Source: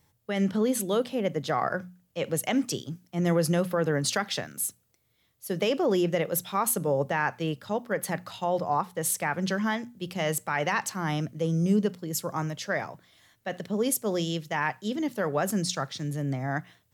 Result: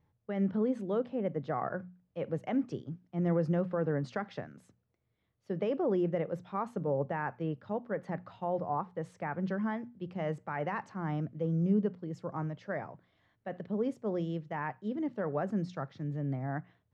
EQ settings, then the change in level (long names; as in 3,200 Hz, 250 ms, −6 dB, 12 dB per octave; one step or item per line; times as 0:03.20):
dynamic equaliser 3,500 Hz, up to −5 dB, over −47 dBFS, Q 1.2
head-to-tape spacing loss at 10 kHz 40 dB
−3.5 dB